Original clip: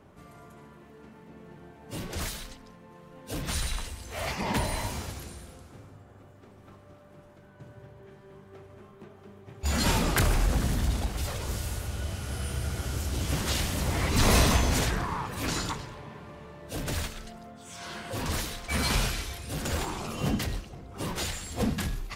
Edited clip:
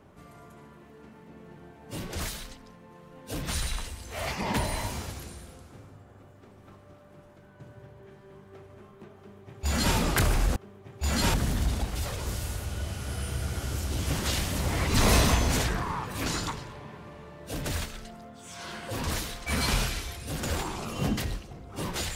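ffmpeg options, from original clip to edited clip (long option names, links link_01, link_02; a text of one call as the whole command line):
ffmpeg -i in.wav -filter_complex "[0:a]asplit=3[link_01][link_02][link_03];[link_01]atrim=end=10.562[link_04];[link_02]atrim=start=9.178:end=9.962[link_05];[link_03]atrim=start=10.558[link_06];[link_04][link_05]acrossfade=duration=0.004:curve1=hsin:curve2=hsin[link_07];[link_07][link_06]acrossfade=duration=0.004:curve1=hsin:curve2=hsin" out.wav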